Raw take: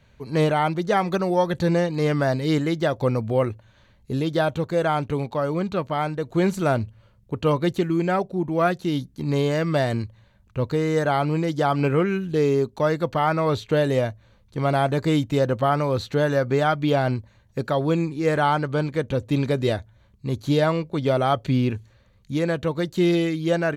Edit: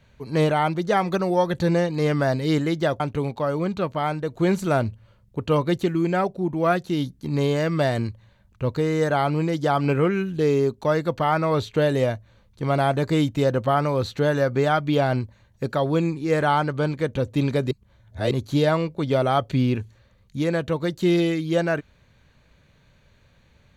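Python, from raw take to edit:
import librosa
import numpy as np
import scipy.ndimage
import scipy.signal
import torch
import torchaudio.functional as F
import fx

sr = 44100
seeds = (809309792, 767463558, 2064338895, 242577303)

y = fx.edit(x, sr, fx.cut(start_s=3.0, length_s=1.95),
    fx.reverse_span(start_s=19.66, length_s=0.6), tone=tone)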